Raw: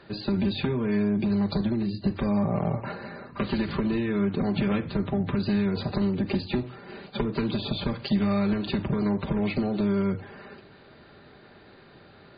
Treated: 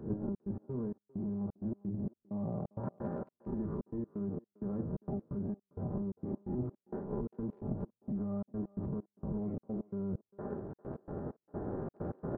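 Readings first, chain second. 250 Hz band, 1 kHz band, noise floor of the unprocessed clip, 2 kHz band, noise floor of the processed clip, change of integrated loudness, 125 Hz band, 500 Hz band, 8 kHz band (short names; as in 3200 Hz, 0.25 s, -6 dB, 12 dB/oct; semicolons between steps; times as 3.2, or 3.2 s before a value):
-12.0 dB, -14.0 dB, -52 dBFS, under -25 dB, under -85 dBFS, -12.5 dB, -10.0 dB, -11.0 dB, n/a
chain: spectral swells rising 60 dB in 0.36 s; recorder AGC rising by 7.7 dB/s; Gaussian blur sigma 9.6 samples; limiter -23.5 dBFS, peak gain reduction 9 dB; reverse; compressor 10:1, threshold -38 dBFS, peak gain reduction 12 dB; reverse; transient shaper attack +7 dB, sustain +2 dB; step gate "xxx.x.xx.." 130 bpm -60 dB; speakerphone echo 0.4 s, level -20 dB; gain +3.5 dB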